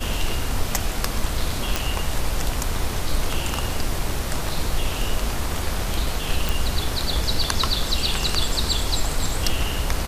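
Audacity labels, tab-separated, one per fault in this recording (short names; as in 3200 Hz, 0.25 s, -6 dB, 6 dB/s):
1.760000	1.760000	pop
6.490000	6.490000	pop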